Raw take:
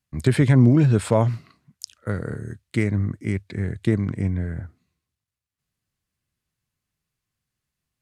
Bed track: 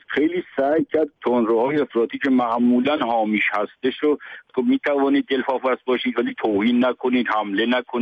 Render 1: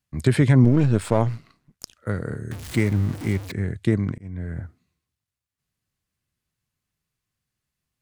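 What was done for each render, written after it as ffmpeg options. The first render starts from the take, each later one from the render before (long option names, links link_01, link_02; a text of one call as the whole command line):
ffmpeg -i in.wav -filter_complex "[0:a]asettb=1/sr,asplit=3[link_01][link_02][link_03];[link_01]atrim=end=0.644[link_04];[link_02]atrim=start=0.64:end=1.96,asetpts=PTS-STARTPTS,afade=type=in:duration=0.004:curve=qsin,afade=type=out:start_time=1.316:duration=0.004:curve=qsin,aeval=exprs='if(lt(val(0),0),0.447*val(0),val(0))':channel_layout=same[link_05];[link_03]atrim=start=1.956[link_06];[link_04][link_05]acrossfade=duration=0.004:curve1=hsin:curve2=qsin[link_07];[link_07][link_06]acrossfade=duration=0.004:curve1=qsin:curve2=hsin,asettb=1/sr,asplit=3[link_08][link_09][link_10];[link_08]atrim=end=2.514[link_11];[link_09]atrim=start=2.51:end=3.52,asetpts=PTS-STARTPTS,afade=type=in:duration=0.004:curve=qsin,afade=type=out:start_time=1.006:duration=0.004:curve=qsin,aeval=exprs='val(0)+0.5*0.0299*sgn(val(0))':channel_layout=same[link_12];[link_10]atrim=start=3.516[link_13];[link_11][link_12]acrossfade=duration=0.004:curve1=hsin:curve2=qsin[link_14];[link_14][link_13]acrossfade=duration=0.004:curve1=qsin:curve2=hsin,asplit=2[link_15][link_16];[link_15]atrim=end=4.18,asetpts=PTS-STARTPTS,afade=type=out:start_time=4.176:duration=0.004:curve=hsin[link_17];[link_16]atrim=start=4.18,asetpts=PTS-STARTPTS,afade=type=in:duration=0.4[link_18];[link_17][link_18]concat=n=2:v=0:a=1" out.wav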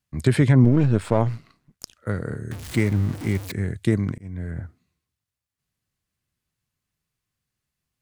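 ffmpeg -i in.wav -filter_complex "[0:a]asettb=1/sr,asplit=3[link_01][link_02][link_03];[link_01]atrim=end=0.494[link_04];[link_02]atrim=start=0.49:end=1.26,asetpts=PTS-STARTPTS,afade=type=in:duration=0.004:curve=qsin,afade=type=out:start_time=0.766:duration=0.004:curve=qsin,highshelf=frequency=5200:gain=-7.5[link_05];[link_03]atrim=start=1.256[link_06];[link_04][link_05]acrossfade=duration=0.004:curve1=hsin:curve2=qsin[link_07];[link_07][link_06]acrossfade=duration=0.004:curve1=qsin:curve2=hsin,asettb=1/sr,asplit=3[link_08][link_09][link_10];[link_08]atrim=end=3.354[link_11];[link_09]atrim=start=3.35:end=4.51,asetpts=PTS-STARTPTS,afade=type=in:duration=0.004:curve=qsin,afade=type=out:start_time=1.156:duration=0.004:curve=qsin,highshelf=frequency=6500:gain=8.5[link_12];[link_10]atrim=start=4.506[link_13];[link_11][link_12]acrossfade=duration=0.004:curve1=hsin:curve2=qsin[link_14];[link_14][link_13]acrossfade=duration=0.004:curve1=qsin:curve2=hsin" out.wav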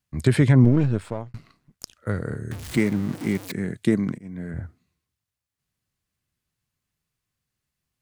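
ffmpeg -i in.wav -filter_complex "[0:a]asettb=1/sr,asplit=3[link_01][link_02][link_03];[link_01]atrim=end=2.774[link_04];[link_02]atrim=start=2.77:end=4.54,asetpts=PTS-STARTPTS,afade=type=in:duration=0.004:curve=qsin,afade=type=out:start_time=1.766:duration=0.004:curve=qsin,lowshelf=frequency=120:width_type=q:width=1.5:gain=-12.5[link_05];[link_03]atrim=start=4.536[link_06];[link_04][link_05]acrossfade=duration=0.004:curve1=hsin:curve2=qsin[link_07];[link_07][link_06]acrossfade=duration=0.004:curve1=qsin:curve2=hsin,asplit=2[link_08][link_09];[link_08]atrim=end=1.34,asetpts=PTS-STARTPTS,afade=type=out:start_time=0.7:duration=0.64[link_10];[link_09]atrim=start=1.34,asetpts=PTS-STARTPTS,afade=type=in:duration=0.004:curve=hsin[link_11];[link_10][link_11]concat=n=2:v=0:a=1" out.wav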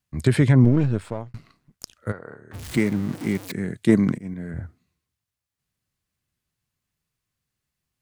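ffmpeg -i in.wav -filter_complex "[0:a]asplit=3[link_01][link_02][link_03];[link_01]afade=type=out:start_time=2.11:duration=0.02[link_04];[link_02]bandpass=frequency=930:width_type=q:width=1.3,afade=type=in:start_time=2.11:duration=0.02,afade=type=out:start_time=2.53:duration=0.02[link_05];[link_03]afade=type=in:start_time=2.53:duration=0.02[link_06];[link_04][link_05][link_06]amix=inputs=3:normalize=0,asettb=1/sr,asplit=3[link_07][link_08][link_09];[link_07]atrim=end=3.894[link_10];[link_08]atrim=start=3.89:end=4.34,asetpts=PTS-STARTPTS,afade=type=in:duration=0.004:curve=qsin,afade=type=out:start_time=0.446:duration=0.004:curve=qsin,acontrast=31[link_11];[link_09]atrim=start=4.336[link_12];[link_10][link_11]acrossfade=duration=0.004:curve1=hsin:curve2=qsin[link_13];[link_13][link_12]acrossfade=duration=0.004:curve1=qsin:curve2=hsin" out.wav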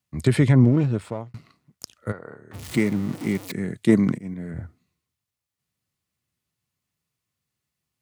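ffmpeg -i in.wav -af "highpass=80,bandreject=frequency=1600:width=12" out.wav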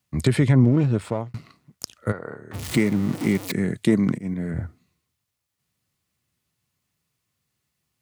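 ffmpeg -i in.wav -filter_complex "[0:a]asplit=2[link_01][link_02];[link_02]acompressor=threshold=-25dB:ratio=6,volume=-1.5dB[link_03];[link_01][link_03]amix=inputs=2:normalize=0,alimiter=limit=-7.5dB:level=0:latency=1:release=436" out.wav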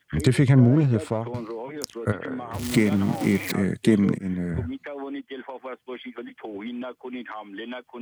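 ffmpeg -i in.wav -i bed.wav -filter_complex "[1:a]volume=-15.5dB[link_01];[0:a][link_01]amix=inputs=2:normalize=0" out.wav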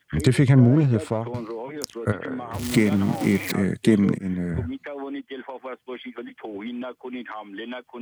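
ffmpeg -i in.wav -af "volume=1dB" out.wav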